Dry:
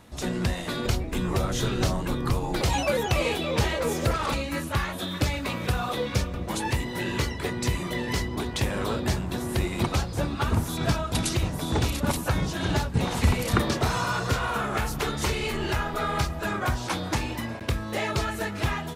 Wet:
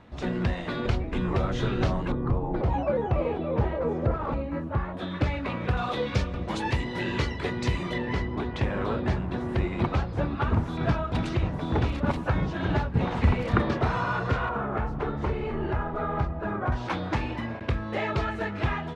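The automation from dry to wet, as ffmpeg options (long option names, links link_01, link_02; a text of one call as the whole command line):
ffmpeg -i in.wav -af "asetnsamples=nb_out_samples=441:pad=0,asendcmd='2.12 lowpass f 1000;4.97 lowpass f 2200;5.77 lowpass f 4000;7.98 lowpass f 2200;14.49 lowpass f 1200;16.72 lowpass f 2600',lowpass=2700" out.wav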